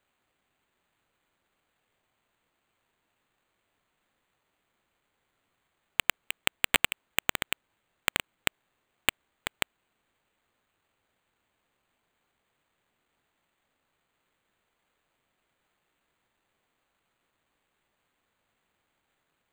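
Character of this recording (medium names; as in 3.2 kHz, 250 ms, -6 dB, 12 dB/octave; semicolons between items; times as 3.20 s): aliases and images of a low sample rate 5.4 kHz, jitter 0%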